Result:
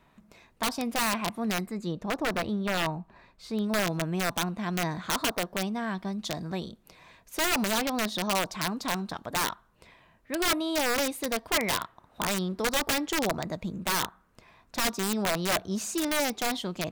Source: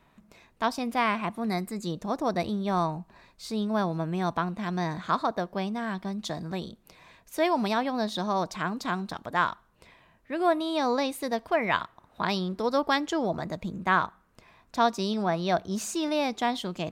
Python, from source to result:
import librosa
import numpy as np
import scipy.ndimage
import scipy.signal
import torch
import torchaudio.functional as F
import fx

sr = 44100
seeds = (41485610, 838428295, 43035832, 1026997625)

y = (np.mod(10.0 ** (19.5 / 20.0) * x + 1.0, 2.0) - 1.0) / 10.0 ** (19.5 / 20.0)
y = fx.bass_treble(y, sr, bass_db=0, treble_db=-9, at=(1.66, 3.64))